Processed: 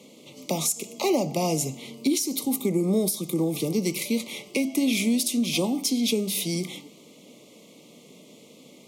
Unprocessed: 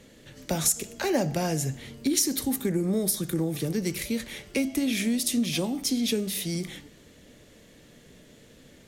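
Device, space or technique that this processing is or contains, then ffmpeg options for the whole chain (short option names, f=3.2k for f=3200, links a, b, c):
PA system with an anti-feedback notch: -af "highpass=f=170:w=0.5412,highpass=f=170:w=1.3066,asuperstop=centerf=1600:order=12:qfactor=2,alimiter=limit=-17.5dB:level=0:latency=1:release=335,volume=4dB"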